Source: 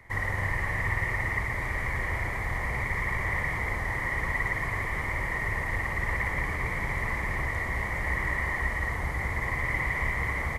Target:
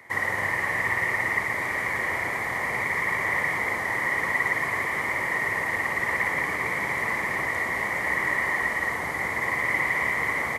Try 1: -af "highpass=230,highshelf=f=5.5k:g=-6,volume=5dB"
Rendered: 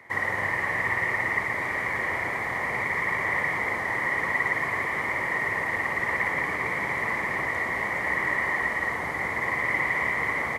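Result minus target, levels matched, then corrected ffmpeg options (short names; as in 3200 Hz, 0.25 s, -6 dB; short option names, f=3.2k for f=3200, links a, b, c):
8000 Hz band -5.5 dB
-af "highpass=230,highshelf=f=5.5k:g=3,volume=5dB"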